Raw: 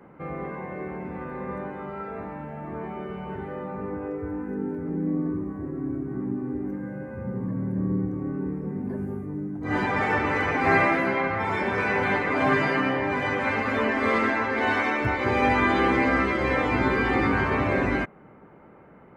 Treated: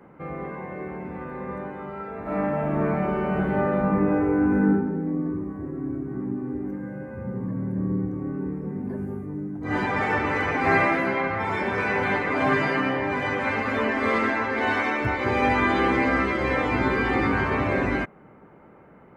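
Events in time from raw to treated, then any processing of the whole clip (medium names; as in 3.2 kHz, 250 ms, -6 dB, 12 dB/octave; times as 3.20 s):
2.22–4.67 s: reverb throw, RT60 0.97 s, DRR -11 dB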